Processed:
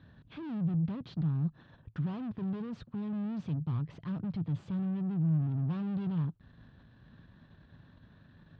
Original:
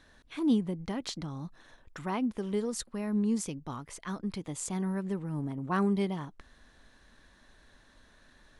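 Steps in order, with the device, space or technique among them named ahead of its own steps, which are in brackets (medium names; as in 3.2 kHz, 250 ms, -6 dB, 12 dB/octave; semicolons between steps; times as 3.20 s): guitar amplifier (valve stage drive 45 dB, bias 0.7; tone controls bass +15 dB, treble -3 dB; cabinet simulation 98–3800 Hz, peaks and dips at 110 Hz +9 dB, 160 Hz +7 dB, 2.1 kHz -7 dB); trim +1 dB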